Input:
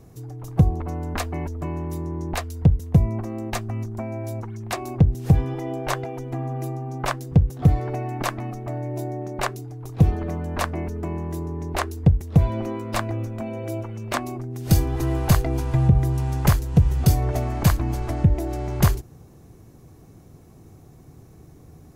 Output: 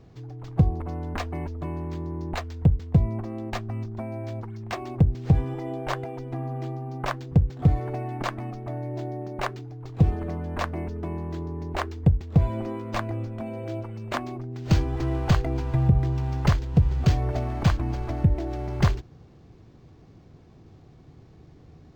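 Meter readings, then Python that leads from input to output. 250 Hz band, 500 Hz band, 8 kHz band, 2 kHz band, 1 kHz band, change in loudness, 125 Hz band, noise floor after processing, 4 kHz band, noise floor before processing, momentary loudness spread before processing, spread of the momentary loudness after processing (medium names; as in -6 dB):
-3.0 dB, -3.0 dB, under -10 dB, -3.0 dB, -3.0 dB, -3.0 dB, -3.0 dB, -52 dBFS, -3.5 dB, -49 dBFS, 11 LU, 11 LU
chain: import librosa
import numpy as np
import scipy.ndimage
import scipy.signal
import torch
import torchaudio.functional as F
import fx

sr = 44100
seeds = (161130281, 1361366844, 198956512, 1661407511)

y = np.interp(np.arange(len(x)), np.arange(len(x))[::4], x[::4])
y = F.gain(torch.from_numpy(y), -3.0).numpy()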